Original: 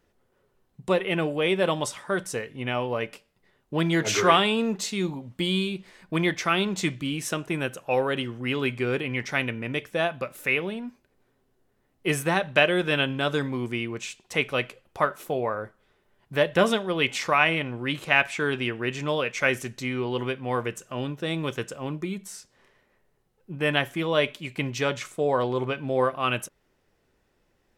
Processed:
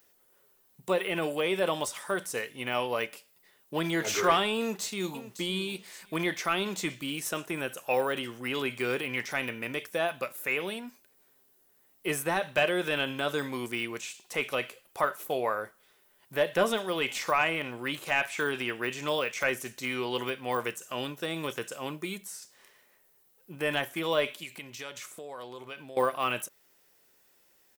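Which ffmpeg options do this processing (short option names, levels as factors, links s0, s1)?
-filter_complex "[0:a]asplit=2[s0][s1];[s1]afade=t=in:st=4.58:d=0.01,afade=t=out:st=5.24:d=0.01,aecho=0:1:560|1120:0.177828|0.0266742[s2];[s0][s2]amix=inputs=2:normalize=0,asettb=1/sr,asplit=3[s3][s4][s5];[s3]atrim=end=24.434[s6];[s4]atrim=start=24.43:end=25.97,asetpts=PTS-STARTPTS,afade=t=in:d=0.004:c=qsin,afade=t=out:st=1.536:d=0.004:c=qsin,acompressor=threshold=0.0126:ratio=5:attack=3.2:release=140:knee=1:detection=peak[s7];[s5]atrim=start=25.966[s8];[s6][s7]acrossfade=d=0.004:c1=hsin:c2=qsin[s9];[s9][s8]acrossfade=d=0.004:c1=qsin:c2=hsin,aemphasis=mode=production:type=riaa,deesser=0.9"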